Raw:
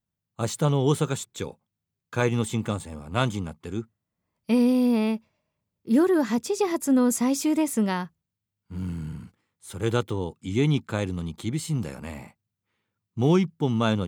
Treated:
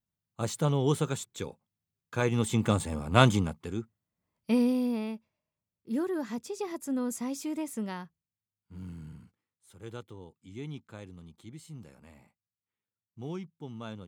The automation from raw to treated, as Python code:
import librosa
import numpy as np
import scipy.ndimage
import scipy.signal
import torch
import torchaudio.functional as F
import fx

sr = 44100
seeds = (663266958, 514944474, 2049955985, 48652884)

y = fx.gain(x, sr, db=fx.line((2.24, -4.5), (2.83, 4.0), (3.35, 4.0), (3.79, -4.0), (4.56, -4.0), (5.08, -11.0), (9.15, -11.0), (9.76, -18.0)))